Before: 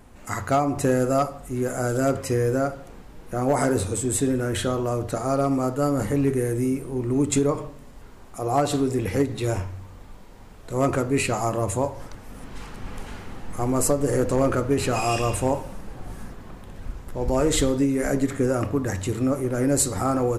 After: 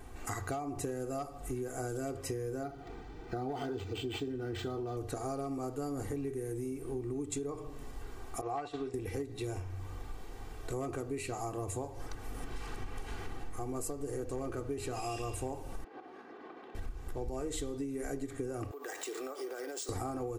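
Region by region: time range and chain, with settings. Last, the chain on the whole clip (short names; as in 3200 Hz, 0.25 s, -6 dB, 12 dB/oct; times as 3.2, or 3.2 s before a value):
2.63–4.97 notch 2800 Hz, Q 19 + notch comb 550 Hz + decimation joined by straight lines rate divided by 4×
8.41–8.94 LPF 2800 Hz + expander -23 dBFS + tilt shelf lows -7.5 dB, about 670 Hz
15.84–16.75 compressor 4:1, threshold -37 dBFS + HPF 260 Hz 24 dB/oct + air absorption 260 m
18.71–19.89 HPF 420 Hz 24 dB/oct + compressor 10:1, threshold -36 dBFS + careless resampling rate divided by 3×, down none, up hold
whole clip: comb 2.6 ms, depth 59%; dynamic EQ 1500 Hz, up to -4 dB, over -38 dBFS, Q 0.94; compressor 10:1, threshold -33 dBFS; gain -1.5 dB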